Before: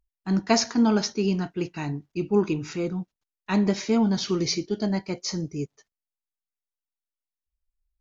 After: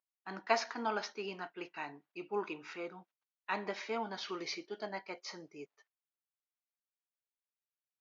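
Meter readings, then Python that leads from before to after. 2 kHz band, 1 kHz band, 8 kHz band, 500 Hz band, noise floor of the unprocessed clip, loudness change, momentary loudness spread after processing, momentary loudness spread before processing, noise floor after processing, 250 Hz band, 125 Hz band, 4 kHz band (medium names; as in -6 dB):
-5.0 dB, -5.5 dB, no reading, -12.0 dB, under -85 dBFS, -14.0 dB, 15 LU, 11 LU, under -85 dBFS, -23.0 dB, -27.5 dB, -13.0 dB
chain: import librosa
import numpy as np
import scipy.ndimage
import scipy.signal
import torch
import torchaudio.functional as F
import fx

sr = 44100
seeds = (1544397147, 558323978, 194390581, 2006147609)

y = fx.bandpass_edges(x, sr, low_hz=730.0, high_hz=2700.0)
y = y * librosa.db_to_amplitude(-3.5)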